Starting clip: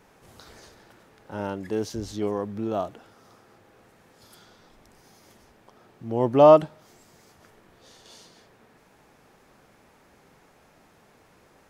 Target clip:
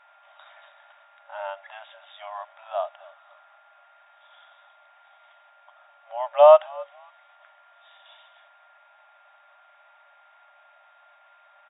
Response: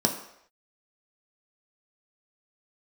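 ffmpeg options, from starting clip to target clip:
-filter_complex "[0:a]asplit=3[a][b][c];[b]adelay=268,afreqshift=-50,volume=-21.5dB[d];[c]adelay=536,afreqshift=-100,volume=-32dB[e];[a][d][e]amix=inputs=3:normalize=0,afftfilt=real='re*between(b*sr/4096,560,3800)':imag='im*between(b*sr/4096,560,3800)':win_size=4096:overlap=0.75,aeval=exprs='val(0)+0.00126*sin(2*PI*1400*n/s)':c=same,volume=1.5dB"

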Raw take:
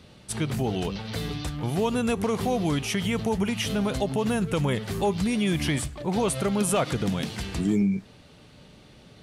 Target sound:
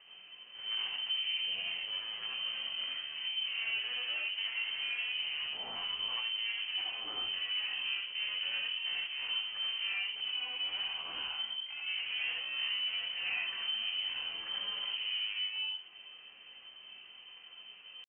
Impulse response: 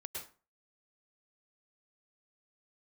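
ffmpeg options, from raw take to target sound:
-filter_complex "[0:a]equalizer=f=110:t=o:w=0.58:g=7,alimiter=limit=-18.5dB:level=0:latency=1:release=366,atempo=0.51,asoftclip=type=hard:threshold=-31dB,asplit=2[a][b];[b]highpass=f=720:p=1,volume=4dB,asoftclip=type=tanh:threshold=-31dB[c];[a][c]amix=inputs=2:normalize=0,lowpass=f=1.4k:p=1,volume=-6dB[d];[1:a]atrim=start_sample=2205,asetrate=61740,aresample=44100[e];[d][e]afir=irnorm=-1:irlink=0,lowpass=f=2.7k:t=q:w=0.5098,lowpass=f=2.7k:t=q:w=0.6013,lowpass=f=2.7k:t=q:w=0.9,lowpass=f=2.7k:t=q:w=2.563,afreqshift=-3200,volume=5dB"

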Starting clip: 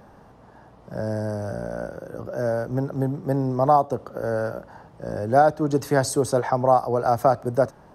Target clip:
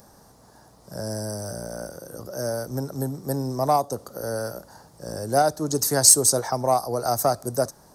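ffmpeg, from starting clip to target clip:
-af "aexciter=amount=7.7:drive=6.1:freq=4.2k,aeval=exprs='1.26*(cos(1*acos(clip(val(0)/1.26,-1,1)))-cos(1*PI/2))+0.0282*(cos(7*acos(clip(val(0)/1.26,-1,1)))-cos(7*PI/2))':c=same,volume=-2.5dB"

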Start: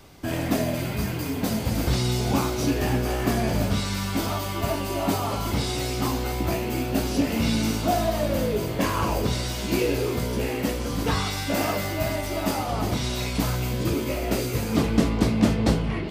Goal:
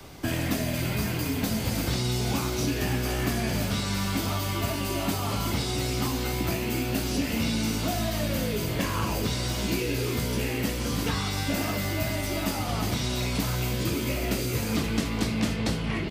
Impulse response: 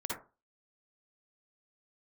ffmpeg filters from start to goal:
-filter_complex "[0:a]acrossover=split=85|290|1400[a][b][c][d];[a]acompressor=threshold=-42dB:ratio=4[e];[b]acompressor=threshold=-34dB:ratio=4[f];[c]acompressor=threshold=-41dB:ratio=4[g];[d]acompressor=threshold=-37dB:ratio=4[h];[e][f][g][h]amix=inputs=4:normalize=0,asplit=2[i][j];[j]aecho=0:1:521:0.141[k];[i][k]amix=inputs=2:normalize=0,volume=4.5dB"

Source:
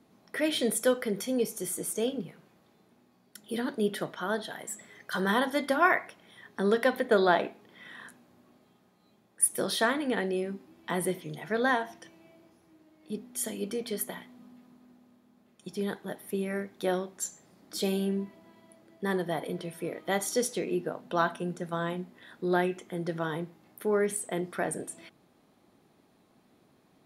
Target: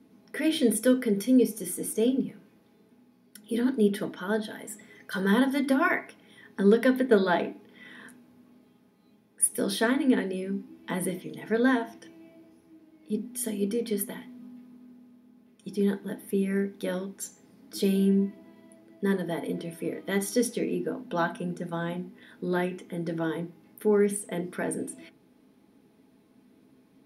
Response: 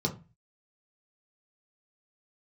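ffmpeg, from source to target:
-filter_complex "[0:a]asplit=2[a][b];[1:a]atrim=start_sample=2205,asetrate=79380,aresample=44100[c];[b][c]afir=irnorm=-1:irlink=0,volume=-9.5dB[d];[a][d]amix=inputs=2:normalize=0"

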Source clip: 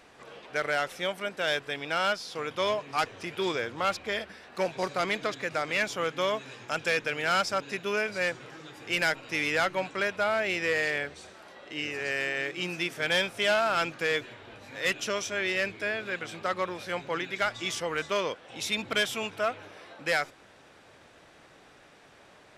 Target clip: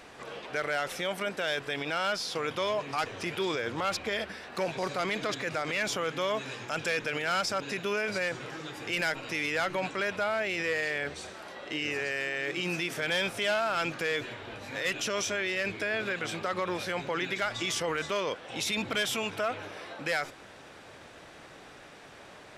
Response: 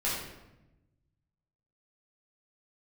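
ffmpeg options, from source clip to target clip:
-af "alimiter=level_in=3.5dB:limit=-24dB:level=0:latency=1:release=29,volume=-3.5dB,volume=5.5dB"

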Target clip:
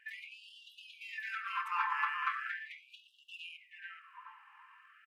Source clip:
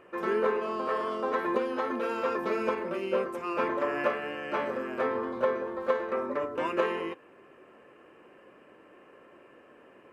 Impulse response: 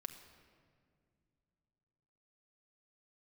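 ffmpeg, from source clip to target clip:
-filter_complex "[0:a]atempo=2,asplit=2[a][b];[b]adelay=427,lowpass=f=1.2k:p=1,volume=-3.5dB,asplit=2[c][d];[d]adelay=427,lowpass=f=1.2k:p=1,volume=0.31,asplit=2[e][f];[f]adelay=427,lowpass=f=1.2k:p=1,volume=0.31,asplit=2[g][h];[h]adelay=427,lowpass=f=1.2k:p=1,volume=0.31[i];[a][c][e][g][i]amix=inputs=5:normalize=0,asplit=2[j][k];[1:a]atrim=start_sample=2205,afade=t=out:st=0.19:d=0.01,atrim=end_sample=8820,lowpass=4.2k[l];[k][l]afir=irnorm=-1:irlink=0,volume=5.5dB[m];[j][m]amix=inputs=2:normalize=0,afftfilt=real='re*gte(b*sr/1024,800*pow(2700/800,0.5+0.5*sin(2*PI*0.39*pts/sr)))':imag='im*gte(b*sr/1024,800*pow(2700/800,0.5+0.5*sin(2*PI*0.39*pts/sr)))':win_size=1024:overlap=0.75,volume=-5dB"

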